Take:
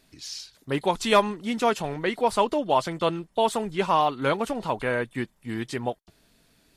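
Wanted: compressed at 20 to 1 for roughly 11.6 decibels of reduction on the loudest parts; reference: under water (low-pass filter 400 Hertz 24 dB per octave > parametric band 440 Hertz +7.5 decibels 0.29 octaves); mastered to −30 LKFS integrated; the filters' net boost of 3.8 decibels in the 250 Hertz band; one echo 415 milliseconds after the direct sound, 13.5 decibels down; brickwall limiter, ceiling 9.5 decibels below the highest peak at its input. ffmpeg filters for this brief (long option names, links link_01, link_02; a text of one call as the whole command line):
ffmpeg -i in.wav -af "equalizer=frequency=250:width_type=o:gain=4.5,acompressor=threshold=-26dB:ratio=20,alimiter=level_in=2dB:limit=-24dB:level=0:latency=1,volume=-2dB,lowpass=frequency=400:width=0.5412,lowpass=frequency=400:width=1.3066,equalizer=frequency=440:width_type=o:width=0.29:gain=7.5,aecho=1:1:415:0.211,volume=8dB" out.wav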